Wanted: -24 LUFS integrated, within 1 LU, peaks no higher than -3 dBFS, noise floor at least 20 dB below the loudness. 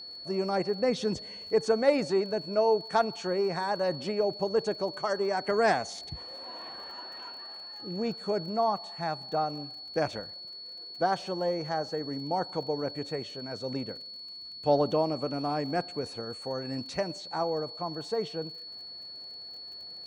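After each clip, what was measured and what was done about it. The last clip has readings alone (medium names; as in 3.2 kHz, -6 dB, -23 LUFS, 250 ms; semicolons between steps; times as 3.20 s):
tick rate 40 per s; steady tone 4.4 kHz; tone level -41 dBFS; loudness -31.0 LUFS; peak level -12.0 dBFS; loudness target -24.0 LUFS
-> de-click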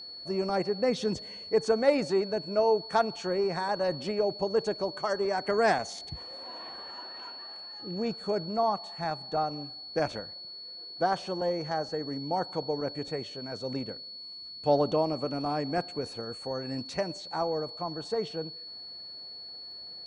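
tick rate 0.050 per s; steady tone 4.4 kHz; tone level -41 dBFS
-> band-stop 4.4 kHz, Q 30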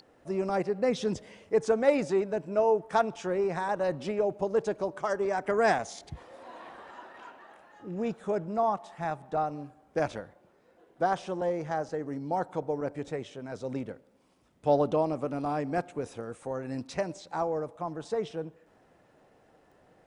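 steady tone not found; loudness -30.5 LUFS; peak level -12.0 dBFS; loudness target -24.0 LUFS
-> trim +6.5 dB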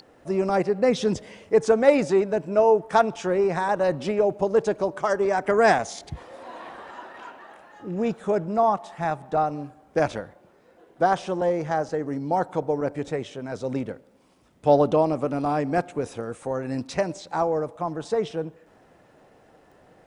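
loudness -24.0 LUFS; peak level -5.5 dBFS; noise floor -57 dBFS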